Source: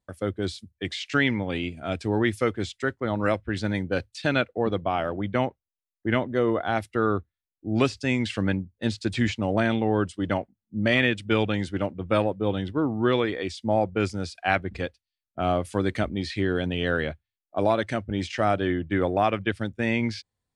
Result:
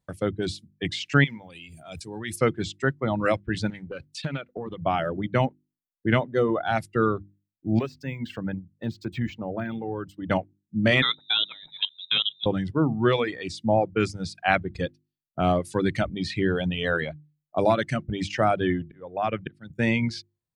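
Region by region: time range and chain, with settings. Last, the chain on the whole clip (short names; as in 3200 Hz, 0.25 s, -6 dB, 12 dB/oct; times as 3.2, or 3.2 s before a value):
1.24–2.36 pre-emphasis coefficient 0.8 + sustainer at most 35 dB/s
3.7–4.85 compressor 12:1, threshold -29 dBFS + Doppler distortion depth 0.19 ms
7.79–10.3 high shelf 2500 Hz -12 dB + compressor 1.5:1, threshold -38 dBFS + decimation joined by straight lines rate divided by 2×
11.02–12.46 inverted band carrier 3800 Hz + level quantiser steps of 12 dB
18.84–19.7 LPF 3500 Hz 6 dB/oct + auto swell 0.586 s
whole clip: notches 50/100/150/200/250/300/350 Hz; reverb removal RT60 1.9 s; bell 150 Hz +13 dB 0.43 oct; gain +2 dB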